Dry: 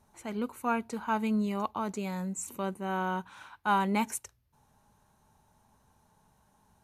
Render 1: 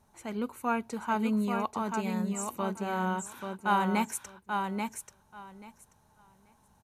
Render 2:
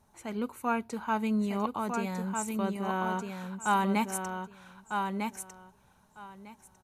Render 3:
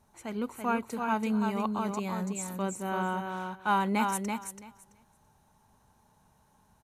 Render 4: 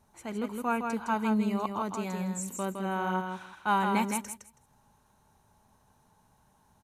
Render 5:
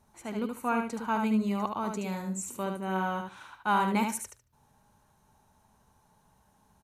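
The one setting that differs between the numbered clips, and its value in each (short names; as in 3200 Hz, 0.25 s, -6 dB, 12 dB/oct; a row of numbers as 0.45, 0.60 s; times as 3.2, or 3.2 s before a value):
feedback echo, time: 835, 1251, 333, 162, 74 ms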